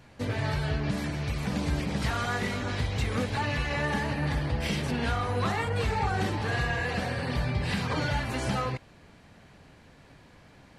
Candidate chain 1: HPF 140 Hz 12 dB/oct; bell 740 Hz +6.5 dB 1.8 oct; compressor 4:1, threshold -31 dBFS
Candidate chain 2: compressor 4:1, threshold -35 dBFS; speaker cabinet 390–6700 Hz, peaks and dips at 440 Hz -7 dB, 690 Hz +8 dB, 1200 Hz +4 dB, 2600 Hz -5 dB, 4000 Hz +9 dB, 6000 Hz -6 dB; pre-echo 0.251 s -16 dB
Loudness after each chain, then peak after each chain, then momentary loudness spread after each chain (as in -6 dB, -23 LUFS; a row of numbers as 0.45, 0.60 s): -34.0, -38.5 LUFS; -21.5, -25.0 dBFS; 20, 19 LU